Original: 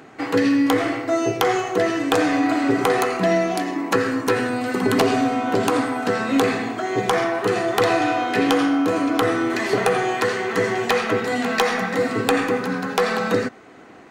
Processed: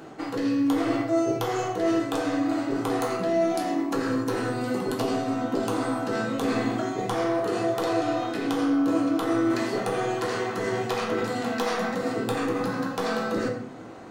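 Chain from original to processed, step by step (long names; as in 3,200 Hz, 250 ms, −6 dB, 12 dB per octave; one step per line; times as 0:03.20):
parametric band 2,100 Hz −7.5 dB 0.85 octaves
reversed playback
downward compressor 6 to 1, threshold −26 dBFS, peak gain reduction 12 dB
reversed playback
rectangular room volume 100 cubic metres, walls mixed, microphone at 0.77 metres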